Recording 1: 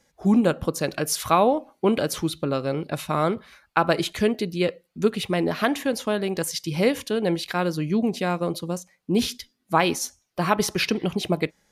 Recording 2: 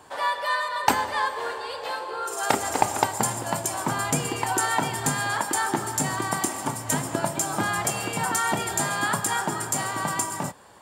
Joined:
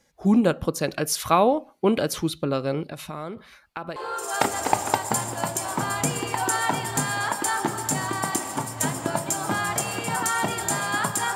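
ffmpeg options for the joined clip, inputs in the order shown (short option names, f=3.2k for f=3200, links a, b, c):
-filter_complex "[0:a]asettb=1/sr,asplit=3[a][b][c];[a]atrim=end=2.844[d];[b]atrim=start=2.84:end=3.96,asetpts=PTS-STARTPTS,afade=t=in:d=0.004:c=qsin,afade=t=out:st=1.116:d=0.004:c=qsin,acompressor=threshold=-33dB:ratio=3:attack=3.2:release=140:knee=1:detection=peak[e];[c]atrim=start=3.956[f];[d][e]acrossfade=d=0.004:c1=hsin:c2=qsin[g];[g][f]acrossfade=d=0.004:c1=qsin:c2=hsin,apad=whole_dur=11.35,atrim=end=11.35,atrim=end=3.962[h];[1:a]atrim=start=2.048:end=9.44[i];[h][i]acrossfade=d=0.004:c1=hsin:c2=hsin"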